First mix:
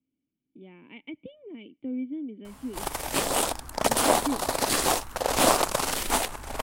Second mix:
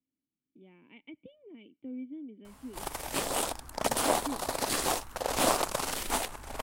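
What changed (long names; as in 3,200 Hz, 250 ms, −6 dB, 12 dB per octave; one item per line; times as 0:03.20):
speech −8.0 dB
background −5.5 dB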